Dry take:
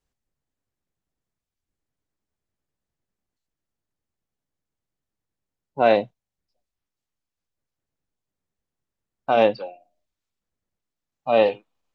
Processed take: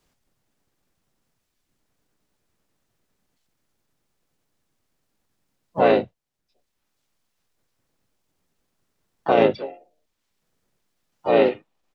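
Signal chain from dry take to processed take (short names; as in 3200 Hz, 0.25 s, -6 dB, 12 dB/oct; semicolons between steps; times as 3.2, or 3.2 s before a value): harmoniser -12 st -10 dB, -5 st -2 dB, +3 st -15 dB; three-band squash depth 40%; gain -1 dB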